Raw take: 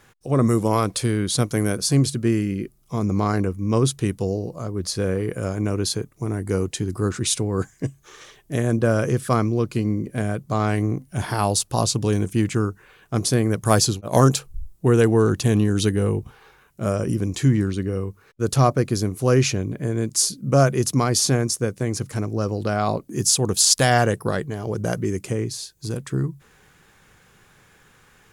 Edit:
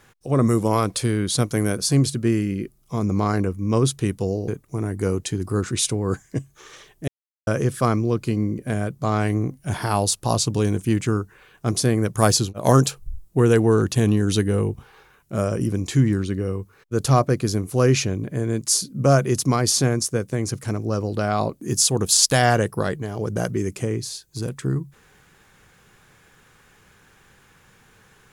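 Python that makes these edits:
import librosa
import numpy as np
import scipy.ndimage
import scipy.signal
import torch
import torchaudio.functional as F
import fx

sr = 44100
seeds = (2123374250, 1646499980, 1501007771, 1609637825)

y = fx.edit(x, sr, fx.cut(start_s=4.48, length_s=1.48),
    fx.silence(start_s=8.56, length_s=0.39), tone=tone)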